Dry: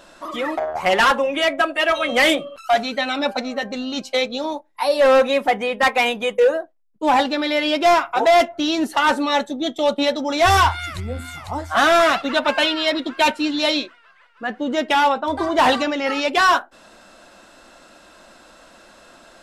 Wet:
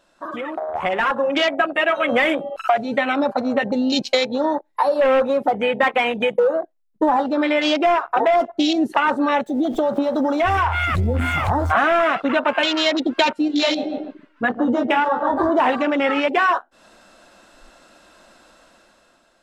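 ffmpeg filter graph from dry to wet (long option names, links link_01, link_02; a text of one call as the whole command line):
ffmpeg -i in.wav -filter_complex "[0:a]asettb=1/sr,asplit=3[link_01][link_02][link_03];[link_01]atrim=end=3.184[link_04];[link_02]atrim=start=3.18:end=7.08,asetpts=PTS-STARTPTS,afade=type=in:duration=0.004:curve=qsin,afade=type=out:start_time=3.896:duration=0.004:curve=qsin,asoftclip=type=hard:threshold=-12dB,equalizer=frequency=4200:width=6.6:gain=4[link_05];[link_03]atrim=start=7.076[link_06];[link_04][link_05]acrossfade=duration=0.004:curve1=hsin:curve2=qsin[link_07];[link_07][link_06]acrossfade=duration=0.004:curve1=qsin:curve2=hsin,asettb=1/sr,asplit=3[link_08][link_09][link_10];[link_08]atrim=end=9.464[link_11];[link_09]atrim=start=9.46:end=11.73,asetpts=PTS-STARTPTS,afade=type=in:duration=0.004:curve=qsin,afade=type=out:start_time=2.266:duration=0.004:curve=qsin,aeval=exprs='val(0)+0.5*0.0168*sgn(val(0))':channel_layout=same,acompressor=threshold=-26dB:ratio=4:attack=3.2:release=140:knee=1:detection=peak[link_12];[link_10]atrim=start=11.726[link_13];[link_11][link_12]acrossfade=duration=0.004:curve1=hsin:curve2=qsin[link_14];[link_14][link_13]acrossfade=duration=0.004:curve1=qsin:curve2=hsin,asettb=1/sr,asplit=3[link_15][link_16][link_17];[link_15]atrim=end=13.484[link_18];[link_16]atrim=start=13.48:end=15.52,asetpts=PTS-STARTPTS,afade=type=in:duration=0.004:curve=qsin,afade=type=out:start_time=2.036:duration=0.004:curve=qsin,flanger=delay=16:depth=2.9:speed=1.8,asplit=2[link_19][link_20];[link_20]adelay=145,lowpass=frequency=1700:poles=1,volume=-8dB,asplit=2[link_21][link_22];[link_22]adelay=145,lowpass=frequency=1700:poles=1,volume=0.36,asplit=2[link_23][link_24];[link_24]adelay=145,lowpass=frequency=1700:poles=1,volume=0.36,asplit=2[link_25][link_26];[link_26]adelay=145,lowpass=frequency=1700:poles=1,volume=0.36[link_27];[link_19][link_21][link_23][link_25][link_27]amix=inputs=5:normalize=0,atrim=end_sample=89964[link_28];[link_17]atrim=start=15.516[link_29];[link_18][link_28]acrossfade=duration=0.004:curve1=hsin:curve2=qsin[link_30];[link_30][link_29]acrossfade=duration=0.004:curve1=qsin:curve2=hsin,acompressor=threshold=-29dB:ratio=8,afwtdn=0.0158,dynaudnorm=framelen=260:gausssize=7:maxgain=11dB,volume=2.5dB" out.wav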